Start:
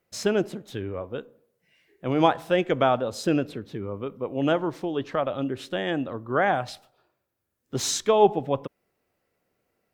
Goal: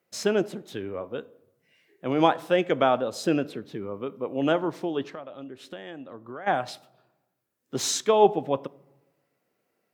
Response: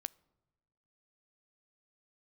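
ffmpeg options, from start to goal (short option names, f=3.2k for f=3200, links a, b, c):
-filter_complex "[0:a]highpass=160,asplit=3[a][b][c];[a]afade=t=out:st=5.09:d=0.02[d];[b]acompressor=threshold=-38dB:ratio=5,afade=t=in:st=5.09:d=0.02,afade=t=out:st=6.46:d=0.02[e];[c]afade=t=in:st=6.46:d=0.02[f];[d][e][f]amix=inputs=3:normalize=0[g];[1:a]atrim=start_sample=2205[h];[g][h]afir=irnorm=-1:irlink=0,volume=2.5dB"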